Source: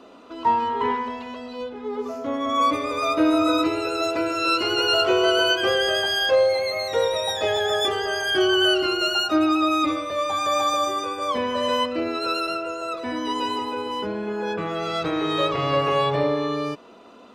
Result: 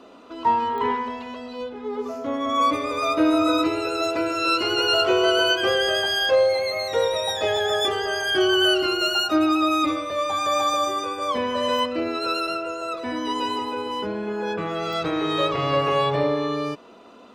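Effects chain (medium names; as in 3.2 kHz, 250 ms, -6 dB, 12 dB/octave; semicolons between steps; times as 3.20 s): 8.46–9.91 s: treble shelf 12 kHz +8 dB; clicks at 0.78/11.79/14.93 s, -23 dBFS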